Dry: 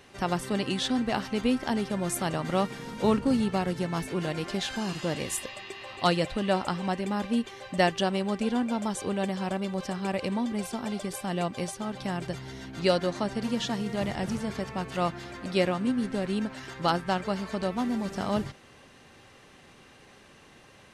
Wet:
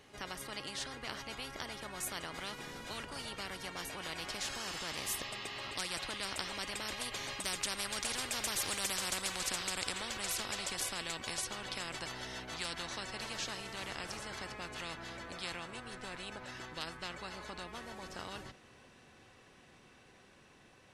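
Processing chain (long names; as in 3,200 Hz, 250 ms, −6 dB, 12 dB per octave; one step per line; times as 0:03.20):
source passing by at 0:08.90, 15 m/s, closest 5.7 metres
every bin compressed towards the loudest bin 10 to 1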